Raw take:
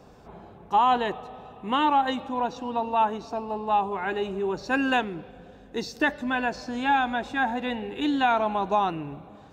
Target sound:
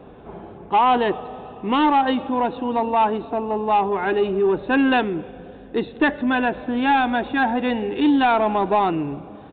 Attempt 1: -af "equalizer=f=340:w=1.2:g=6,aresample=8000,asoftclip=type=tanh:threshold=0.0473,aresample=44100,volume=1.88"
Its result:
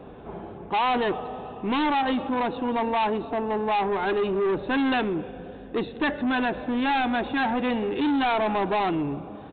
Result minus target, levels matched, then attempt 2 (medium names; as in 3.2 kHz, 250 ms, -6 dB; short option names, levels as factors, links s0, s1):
saturation: distortion +10 dB
-af "equalizer=f=340:w=1.2:g=6,aresample=8000,asoftclip=type=tanh:threshold=0.158,aresample=44100,volume=1.88"